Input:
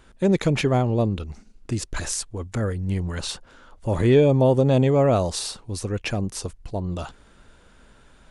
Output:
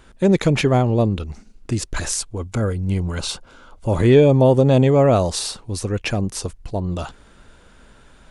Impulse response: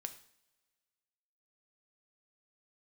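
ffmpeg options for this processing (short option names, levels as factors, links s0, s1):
-filter_complex "[0:a]asettb=1/sr,asplit=3[s0][s1][s2];[s0]atrim=end=2.184[s3];[s1]atrim=start=2.18:end=4,asetpts=PTS-STARTPTS,afade=t=in:d=0.004:c=qsin,afade=t=out:st=1.816:d=0.004:c=qsin,asuperstop=centerf=1800:order=4:qfactor=6.9[s4];[s2]atrim=start=3.996[s5];[s3][s4]acrossfade=d=0.004:c1=hsin:c2=qsin[s6];[s6][s5]acrossfade=d=0.004:c1=qsin:c2=hsin,volume=1.58"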